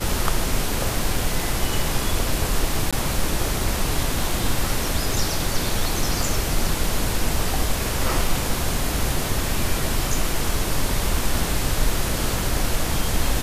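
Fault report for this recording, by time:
0:02.91–0:02.93: drop-out 16 ms

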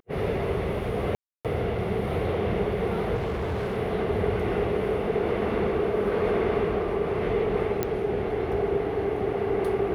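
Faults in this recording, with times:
0:01.15–0:01.45: drop-out 297 ms
0:03.15–0:03.78: clipping −25.5 dBFS
0:07.83: click −11 dBFS

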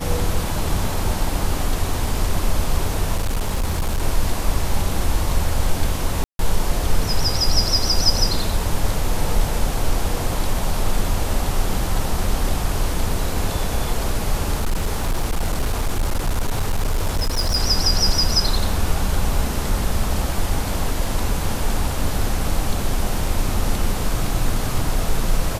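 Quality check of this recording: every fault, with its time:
0:03.15–0:04.02: clipping −16.5 dBFS
0:06.24–0:06.39: drop-out 152 ms
0:14.54–0:17.57: clipping −15.5 dBFS

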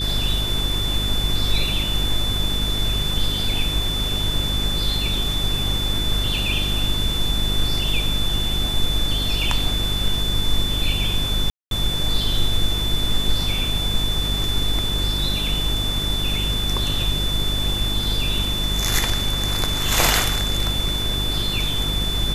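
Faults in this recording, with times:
mains hum 50 Hz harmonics 8 −26 dBFS
whistle 3,500 Hz −24 dBFS
0:11.50–0:11.71: drop-out 212 ms

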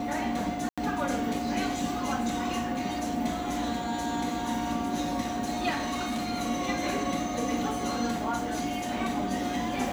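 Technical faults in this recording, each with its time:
whistle 720 Hz −34 dBFS
0:00.69–0:00.78: drop-out 86 ms
0:05.69–0:06.32: clipping −27 dBFS

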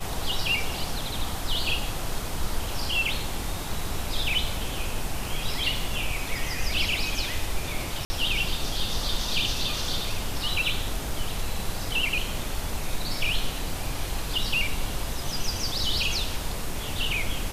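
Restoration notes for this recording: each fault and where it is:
0:08.05–0:08.10: drop-out 50 ms

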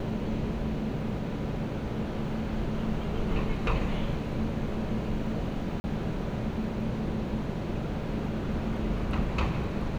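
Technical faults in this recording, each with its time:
0:05.80–0:05.84: drop-out 40 ms

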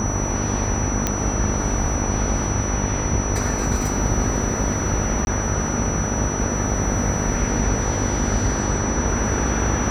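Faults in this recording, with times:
mains buzz 50 Hz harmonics 19 −26 dBFS
whistle 5,900 Hz −28 dBFS
0:01.07: click −5 dBFS
0:05.25–0:05.27: drop-out 21 ms

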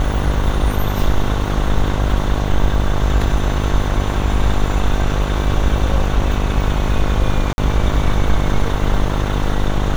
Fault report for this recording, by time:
mains buzz 50 Hz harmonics 23 −20 dBFS
0:07.53–0:07.58: drop-out 51 ms

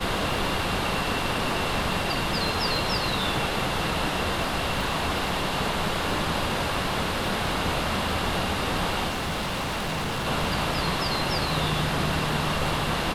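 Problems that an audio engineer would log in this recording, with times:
surface crackle 17 per second −29 dBFS
0:09.08–0:10.27: clipping −25.5 dBFS

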